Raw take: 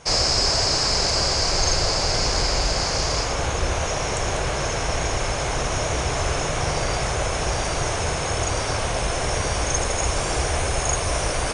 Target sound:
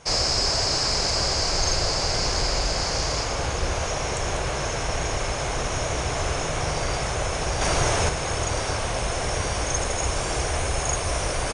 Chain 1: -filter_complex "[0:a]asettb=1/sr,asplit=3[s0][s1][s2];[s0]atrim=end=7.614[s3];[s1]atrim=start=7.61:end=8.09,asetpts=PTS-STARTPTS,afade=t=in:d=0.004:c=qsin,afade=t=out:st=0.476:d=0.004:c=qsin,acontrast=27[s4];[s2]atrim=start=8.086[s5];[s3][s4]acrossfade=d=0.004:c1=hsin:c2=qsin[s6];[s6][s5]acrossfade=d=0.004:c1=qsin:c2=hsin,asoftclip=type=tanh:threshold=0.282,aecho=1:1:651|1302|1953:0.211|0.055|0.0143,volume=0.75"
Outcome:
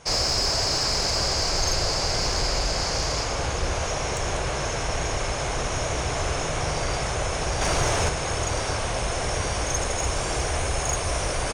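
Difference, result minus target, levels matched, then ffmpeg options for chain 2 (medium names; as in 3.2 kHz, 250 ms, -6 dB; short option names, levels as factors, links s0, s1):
saturation: distortion +16 dB
-filter_complex "[0:a]asettb=1/sr,asplit=3[s0][s1][s2];[s0]atrim=end=7.614[s3];[s1]atrim=start=7.61:end=8.09,asetpts=PTS-STARTPTS,afade=t=in:d=0.004:c=qsin,afade=t=out:st=0.476:d=0.004:c=qsin,acontrast=27[s4];[s2]atrim=start=8.086[s5];[s3][s4]acrossfade=d=0.004:c1=hsin:c2=qsin[s6];[s6][s5]acrossfade=d=0.004:c1=qsin:c2=hsin,asoftclip=type=tanh:threshold=0.794,aecho=1:1:651|1302|1953:0.211|0.055|0.0143,volume=0.75"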